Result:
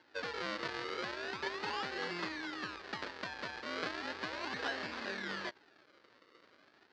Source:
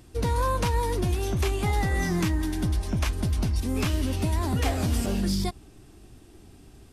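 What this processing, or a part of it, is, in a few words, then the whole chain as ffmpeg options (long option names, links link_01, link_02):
circuit-bent sampling toy: -af "acrusher=samples=36:mix=1:aa=0.000001:lfo=1:lforange=36:lforate=0.36,highpass=510,equalizer=frequency=710:width_type=q:width=4:gain=-6,equalizer=frequency=1700:width_type=q:width=4:gain=7,equalizer=frequency=4500:width_type=q:width=4:gain=6,lowpass=frequency=4900:width=0.5412,lowpass=frequency=4900:width=1.3066,volume=-6dB"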